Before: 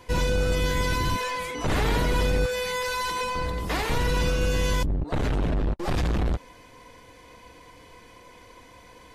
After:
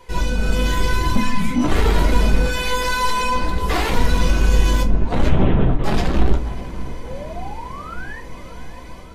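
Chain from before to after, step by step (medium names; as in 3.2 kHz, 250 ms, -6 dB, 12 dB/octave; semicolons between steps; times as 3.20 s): 1.15–1.62 s: resonant low shelf 330 Hz +13 dB, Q 3; level rider gain up to 6.5 dB; saturation -15 dBFS, distortion -16 dB; flange 1.1 Hz, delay 2 ms, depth 2.9 ms, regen +47%; 5.29–5.84 s: LPC vocoder at 8 kHz whisper; 7.03–8.20 s: painted sound rise 470–1900 Hz -40 dBFS; on a send: filtered feedback delay 594 ms, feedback 73%, low-pass 2.3 kHz, level -15.5 dB; on the sum: simulated room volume 180 m³, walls furnished, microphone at 1.1 m; trim +3.5 dB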